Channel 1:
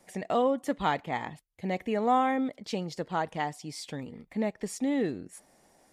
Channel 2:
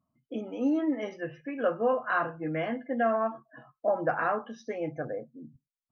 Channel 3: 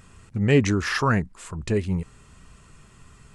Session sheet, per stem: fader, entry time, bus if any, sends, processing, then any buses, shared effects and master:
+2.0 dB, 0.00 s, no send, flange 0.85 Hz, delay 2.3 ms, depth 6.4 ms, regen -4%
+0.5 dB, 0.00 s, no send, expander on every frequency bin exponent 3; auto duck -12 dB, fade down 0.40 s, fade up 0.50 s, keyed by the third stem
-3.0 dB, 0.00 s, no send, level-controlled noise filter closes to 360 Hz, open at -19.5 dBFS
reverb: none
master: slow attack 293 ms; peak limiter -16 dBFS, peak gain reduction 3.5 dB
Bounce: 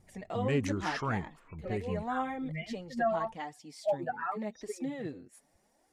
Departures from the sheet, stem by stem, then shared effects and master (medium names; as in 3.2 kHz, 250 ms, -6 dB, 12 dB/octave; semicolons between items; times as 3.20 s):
stem 1 +2.0 dB -> -6.0 dB; stem 3 -3.0 dB -> -12.0 dB; master: missing slow attack 293 ms